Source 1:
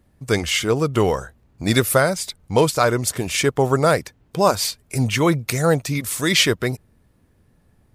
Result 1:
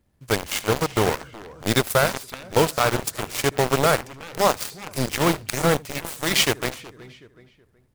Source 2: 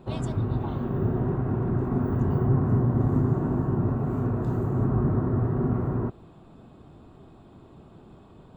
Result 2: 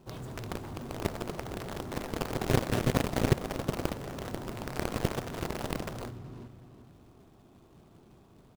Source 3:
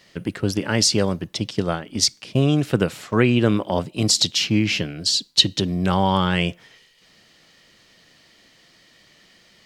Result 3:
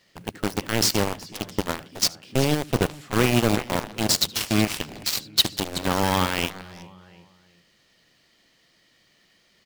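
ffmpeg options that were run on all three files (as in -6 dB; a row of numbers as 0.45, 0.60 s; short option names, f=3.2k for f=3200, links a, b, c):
-filter_complex "[0:a]acrusher=bits=3:mode=log:mix=0:aa=0.000001,asplit=2[a][b];[b]adelay=372,lowpass=f=4.1k:p=1,volume=-10dB,asplit=2[c][d];[d]adelay=372,lowpass=f=4.1k:p=1,volume=0.3,asplit=2[e][f];[f]adelay=372,lowpass=f=4.1k:p=1,volume=0.3[g];[c][e][g]amix=inputs=3:normalize=0[h];[a][h]amix=inputs=2:normalize=0,acontrast=61,asplit=2[i][j];[j]aecho=0:1:75:0.2[k];[i][k]amix=inputs=2:normalize=0,aeval=exprs='1.06*(cos(1*acos(clip(val(0)/1.06,-1,1)))-cos(1*PI/2))+0.0237*(cos(5*acos(clip(val(0)/1.06,-1,1)))-cos(5*PI/2))+0.237*(cos(7*acos(clip(val(0)/1.06,-1,1)))-cos(7*PI/2))':c=same,volume=-8dB"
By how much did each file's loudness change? -3.0, -8.0, -3.5 LU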